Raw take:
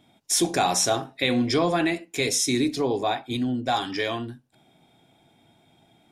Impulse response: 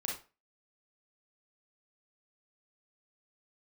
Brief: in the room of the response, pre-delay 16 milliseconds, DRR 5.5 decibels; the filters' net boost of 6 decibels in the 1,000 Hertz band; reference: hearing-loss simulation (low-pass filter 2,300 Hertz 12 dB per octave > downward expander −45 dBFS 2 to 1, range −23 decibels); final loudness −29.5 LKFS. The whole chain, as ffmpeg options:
-filter_complex "[0:a]equalizer=frequency=1000:width_type=o:gain=9,asplit=2[link_01][link_02];[1:a]atrim=start_sample=2205,adelay=16[link_03];[link_02][link_03]afir=irnorm=-1:irlink=0,volume=-7.5dB[link_04];[link_01][link_04]amix=inputs=2:normalize=0,lowpass=2300,agate=range=-23dB:threshold=-45dB:ratio=2,volume=-7.5dB"

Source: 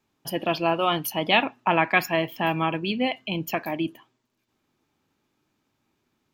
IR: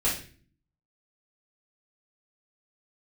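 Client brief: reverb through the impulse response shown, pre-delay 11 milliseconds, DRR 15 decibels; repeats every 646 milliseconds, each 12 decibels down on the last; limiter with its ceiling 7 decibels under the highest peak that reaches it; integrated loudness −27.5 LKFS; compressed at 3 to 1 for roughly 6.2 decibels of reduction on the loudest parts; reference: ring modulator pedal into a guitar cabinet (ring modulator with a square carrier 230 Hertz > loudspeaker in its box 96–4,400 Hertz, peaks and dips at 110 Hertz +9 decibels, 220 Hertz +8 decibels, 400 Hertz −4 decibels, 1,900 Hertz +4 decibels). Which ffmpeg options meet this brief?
-filter_complex "[0:a]acompressor=threshold=-23dB:ratio=3,alimiter=limit=-17dB:level=0:latency=1,aecho=1:1:646|1292|1938:0.251|0.0628|0.0157,asplit=2[link_01][link_02];[1:a]atrim=start_sample=2205,adelay=11[link_03];[link_02][link_03]afir=irnorm=-1:irlink=0,volume=-25dB[link_04];[link_01][link_04]amix=inputs=2:normalize=0,aeval=exprs='val(0)*sgn(sin(2*PI*230*n/s))':channel_layout=same,highpass=96,equalizer=frequency=110:width_type=q:width=4:gain=9,equalizer=frequency=220:width_type=q:width=4:gain=8,equalizer=frequency=400:width_type=q:width=4:gain=-4,equalizer=frequency=1900:width_type=q:width=4:gain=4,lowpass=frequency=4400:width=0.5412,lowpass=frequency=4400:width=1.3066,volume=2.5dB"

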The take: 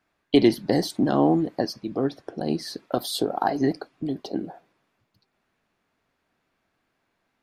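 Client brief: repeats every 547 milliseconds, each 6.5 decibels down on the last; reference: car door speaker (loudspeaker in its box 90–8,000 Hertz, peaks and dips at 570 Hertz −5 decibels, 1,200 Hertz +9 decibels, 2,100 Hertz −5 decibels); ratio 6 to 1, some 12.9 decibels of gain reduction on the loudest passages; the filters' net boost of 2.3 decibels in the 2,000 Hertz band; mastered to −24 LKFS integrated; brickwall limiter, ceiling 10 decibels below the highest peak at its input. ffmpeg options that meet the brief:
ffmpeg -i in.wav -af "equalizer=frequency=2000:width_type=o:gain=4,acompressor=threshold=-26dB:ratio=6,alimiter=limit=-21.5dB:level=0:latency=1,highpass=90,equalizer=frequency=570:width_type=q:width=4:gain=-5,equalizer=frequency=1200:width_type=q:width=4:gain=9,equalizer=frequency=2100:width_type=q:width=4:gain=-5,lowpass=frequency=8000:width=0.5412,lowpass=frequency=8000:width=1.3066,aecho=1:1:547|1094|1641|2188|2735|3282:0.473|0.222|0.105|0.0491|0.0231|0.0109,volume=10dB" out.wav

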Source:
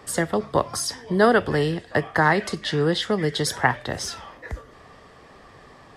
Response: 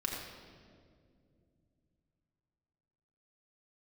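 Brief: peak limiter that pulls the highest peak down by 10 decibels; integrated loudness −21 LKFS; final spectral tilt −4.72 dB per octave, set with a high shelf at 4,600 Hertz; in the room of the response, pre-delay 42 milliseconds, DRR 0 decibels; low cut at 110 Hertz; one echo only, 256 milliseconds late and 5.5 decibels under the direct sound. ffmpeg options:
-filter_complex "[0:a]highpass=110,highshelf=frequency=4600:gain=-8,alimiter=limit=-14dB:level=0:latency=1,aecho=1:1:256:0.531,asplit=2[link_01][link_02];[1:a]atrim=start_sample=2205,adelay=42[link_03];[link_02][link_03]afir=irnorm=-1:irlink=0,volume=-3.5dB[link_04];[link_01][link_04]amix=inputs=2:normalize=0,volume=1dB"

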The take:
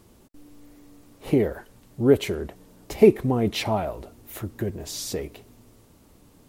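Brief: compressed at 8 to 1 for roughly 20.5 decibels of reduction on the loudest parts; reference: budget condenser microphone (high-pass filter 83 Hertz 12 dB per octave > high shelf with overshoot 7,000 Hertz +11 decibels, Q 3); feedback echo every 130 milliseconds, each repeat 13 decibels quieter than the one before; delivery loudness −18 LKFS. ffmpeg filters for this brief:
ffmpeg -i in.wav -af "acompressor=threshold=-31dB:ratio=8,highpass=83,highshelf=frequency=7000:width_type=q:width=3:gain=11,aecho=1:1:130|260|390:0.224|0.0493|0.0108,volume=13.5dB" out.wav

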